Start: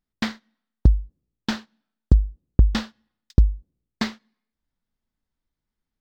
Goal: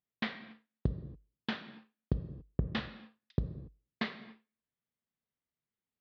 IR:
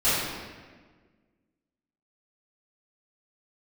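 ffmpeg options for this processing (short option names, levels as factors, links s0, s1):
-filter_complex "[0:a]highpass=140,equalizer=f=210:t=q:w=4:g=-5,equalizer=f=300:t=q:w=4:g=-8,equalizer=f=880:t=q:w=4:g=-6,equalizer=f=1400:t=q:w=4:g=-4,lowpass=f=3500:w=0.5412,lowpass=f=3500:w=1.3066,asplit=2[s0][s1];[1:a]atrim=start_sample=2205,afade=t=out:st=0.34:d=0.01,atrim=end_sample=15435[s2];[s1][s2]afir=irnorm=-1:irlink=0,volume=0.0631[s3];[s0][s3]amix=inputs=2:normalize=0,volume=0.501"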